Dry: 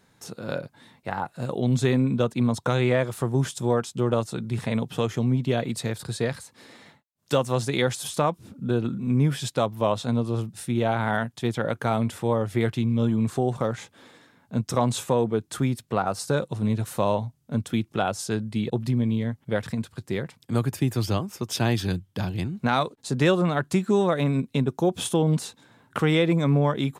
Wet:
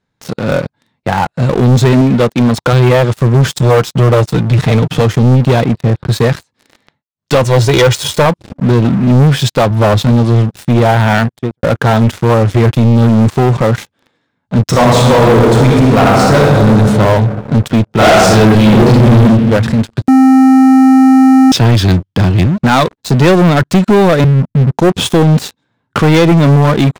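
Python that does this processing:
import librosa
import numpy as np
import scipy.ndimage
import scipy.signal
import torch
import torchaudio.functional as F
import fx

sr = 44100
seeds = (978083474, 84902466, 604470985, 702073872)

y = fx.low_shelf(x, sr, hz=170.0, db=-9.0, at=(2.01, 2.73))
y = fx.comb(y, sr, ms=6.6, depth=0.47, at=(3.48, 5.01))
y = fx.air_absorb(y, sr, metres=450.0, at=(5.64, 6.09))
y = fx.comb(y, sr, ms=2.1, depth=0.65, at=(7.43, 8.26))
y = fx.low_shelf(y, sr, hz=210.0, db=6.0, at=(9.7, 10.12))
y = fx.studio_fade_out(y, sr, start_s=11.18, length_s=0.45)
y = fx.reverb_throw(y, sr, start_s=14.67, length_s=2.0, rt60_s=2.3, drr_db=-3.0)
y = fx.reverb_throw(y, sr, start_s=17.95, length_s=1.21, rt60_s=1.1, drr_db=-10.0)
y = fx.cheby2_lowpass(y, sr, hz=520.0, order=4, stop_db=50, at=(24.24, 24.72))
y = fx.edit(y, sr, fx.bleep(start_s=20.08, length_s=1.44, hz=263.0, db=-13.5), tone=tone)
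y = scipy.signal.sosfilt(scipy.signal.butter(2, 5600.0, 'lowpass', fs=sr, output='sos'), y)
y = fx.low_shelf(y, sr, hz=120.0, db=6.5)
y = fx.leveller(y, sr, passes=5)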